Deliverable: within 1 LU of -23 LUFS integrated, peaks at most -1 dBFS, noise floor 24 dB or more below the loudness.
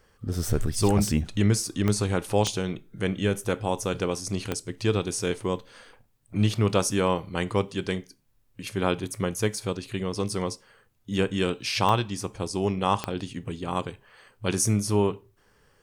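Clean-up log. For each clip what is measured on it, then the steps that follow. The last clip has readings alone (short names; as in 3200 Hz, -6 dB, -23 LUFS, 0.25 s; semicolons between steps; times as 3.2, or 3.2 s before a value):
clicks 5; loudness -27.0 LUFS; peak -7.5 dBFS; loudness target -23.0 LUFS
-> de-click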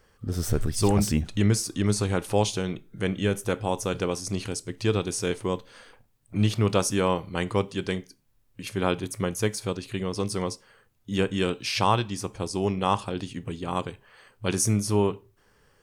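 clicks 1; loudness -27.0 LUFS; peak -7.5 dBFS; loudness target -23.0 LUFS
-> gain +4 dB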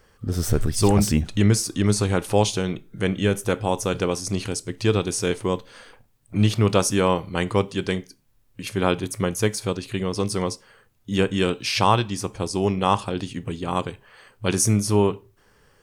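loudness -23.0 LUFS; peak -3.5 dBFS; noise floor -60 dBFS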